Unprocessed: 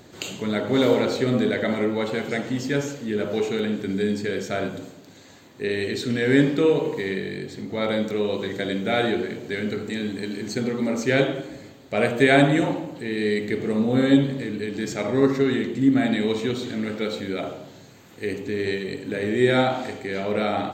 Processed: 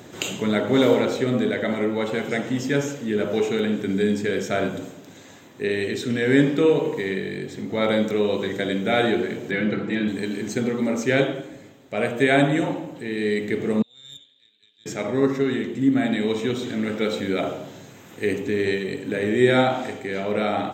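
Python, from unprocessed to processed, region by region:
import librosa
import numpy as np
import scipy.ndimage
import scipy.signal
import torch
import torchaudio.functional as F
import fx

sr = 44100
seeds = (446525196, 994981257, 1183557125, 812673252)

y = fx.chain(x, sr, fx.lowpass(hz=3000.0, slope=12),
    fx.comb(ms=6.0, depth=0.9), at=(9.51, 10.08))
y = fx.chain(y, sr, fx.bandpass_q(hz=3600.0, q=16.0),
    fx.tube_stage(drive_db=33.0, bias=0.7), at=(13.82, 14.86))
y = scipy.signal.sosfilt(scipy.signal.butter(2, 89.0, 'highpass', fs=sr, output='sos'), y)
y = fx.notch(y, sr, hz=4400.0, q=5.3)
y = fx.rider(y, sr, range_db=10, speed_s=2.0)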